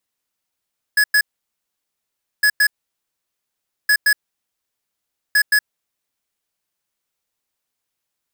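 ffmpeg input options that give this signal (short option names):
-f lavfi -i "aevalsrc='0.211*(2*lt(mod(1690*t,1),0.5)-1)*clip(min(mod(mod(t,1.46),0.17),0.07-mod(mod(t,1.46),0.17))/0.005,0,1)*lt(mod(t,1.46),0.34)':d=5.84:s=44100"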